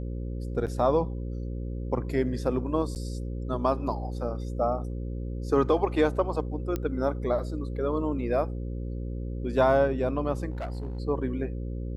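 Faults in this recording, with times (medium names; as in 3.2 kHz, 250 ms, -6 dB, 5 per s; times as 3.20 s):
buzz 60 Hz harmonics 9 -33 dBFS
0.66–0.67 s: dropout 8.2 ms
2.95–2.96 s: dropout 9.2 ms
6.76 s: pop -17 dBFS
10.50–11.00 s: clipped -29.5 dBFS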